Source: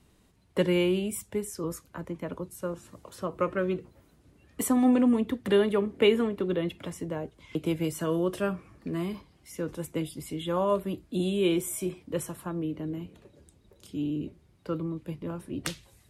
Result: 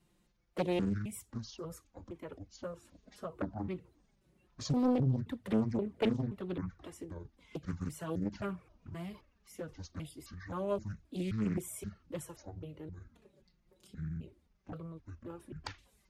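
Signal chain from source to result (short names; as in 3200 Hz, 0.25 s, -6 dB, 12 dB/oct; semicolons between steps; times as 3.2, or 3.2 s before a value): trilling pitch shifter -10.5 st, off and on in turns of 0.263 s; envelope flanger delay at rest 5.9 ms, full sweep at -21 dBFS; Doppler distortion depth 0.73 ms; gain -6 dB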